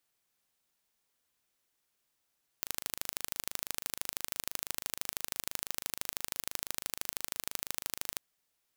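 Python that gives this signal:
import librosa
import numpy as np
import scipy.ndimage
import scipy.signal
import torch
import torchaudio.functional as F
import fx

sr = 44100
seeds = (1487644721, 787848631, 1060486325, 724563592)

y = fx.impulse_train(sr, length_s=5.54, per_s=26.0, accent_every=2, level_db=-5.5)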